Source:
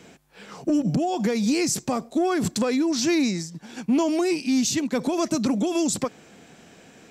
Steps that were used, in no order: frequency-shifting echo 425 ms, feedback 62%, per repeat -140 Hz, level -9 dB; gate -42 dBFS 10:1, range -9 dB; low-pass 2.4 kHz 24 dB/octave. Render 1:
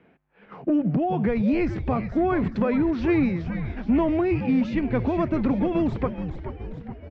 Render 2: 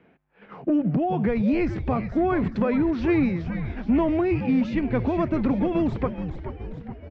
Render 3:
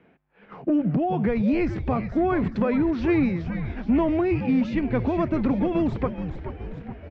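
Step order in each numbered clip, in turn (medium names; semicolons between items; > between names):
low-pass > gate > frequency-shifting echo; gate > low-pass > frequency-shifting echo; low-pass > frequency-shifting echo > gate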